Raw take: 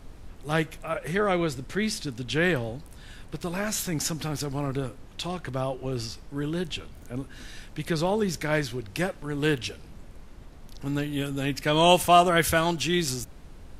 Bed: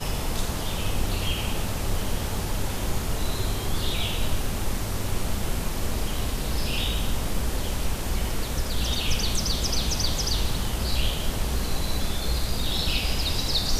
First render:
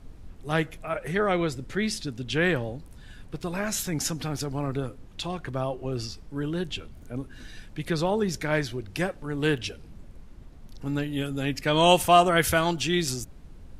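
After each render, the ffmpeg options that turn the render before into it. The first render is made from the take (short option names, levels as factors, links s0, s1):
-af "afftdn=nr=6:nf=-46"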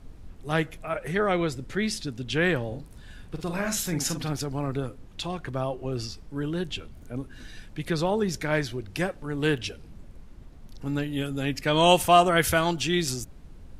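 -filter_complex "[0:a]asettb=1/sr,asplit=3[s0][s1][s2];[s0]atrim=end=2.674[s3];[s1]atrim=start=2.67:end=4.33,asetpts=PTS-STARTPTS,afade=t=in:d=0.004:c=qsin,afade=t=out:st=1.656:d=0.004:c=qsin,asplit=2[s4][s5];[s5]adelay=46,volume=0.447[s6];[s4][s6]amix=inputs=2:normalize=0,atrim=end_sample=73206[s7];[s2]atrim=start=4.326[s8];[s3][s7]acrossfade=d=0.004:c1=hsin:c2=qsin[s9];[s9][s8]acrossfade=d=0.004:c1=qsin:c2=hsin"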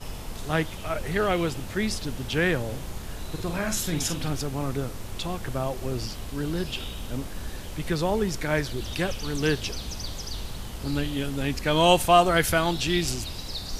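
-filter_complex "[1:a]volume=0.335[s0];[0:a][s0]amix=inputs=2:normalize=0"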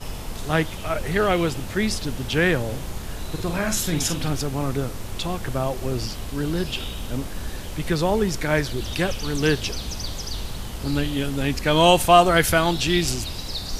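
-af "volume=1.58,alimiter=limit=0.794:level=0:latency=1"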